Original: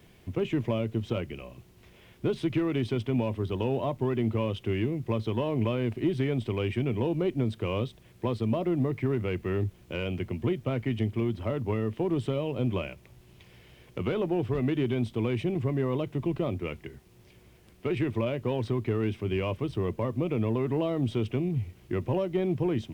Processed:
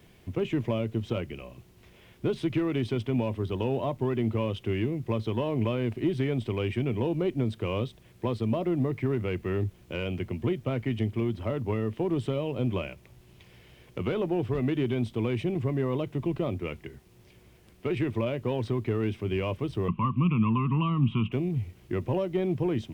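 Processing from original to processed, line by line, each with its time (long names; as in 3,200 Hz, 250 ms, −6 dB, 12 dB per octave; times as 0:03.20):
0:19.88–0:21.32: drawn EQ curve 100 Hz 0 dB, 180 Hz +12 dB, 490 Hz −17 dB, 700 Hz −17 dB, 1,100 Hz +15 dB, 1,700 Hz −13 dB, 2,700 Hz +11 dB, 4,500 Hz −21 dB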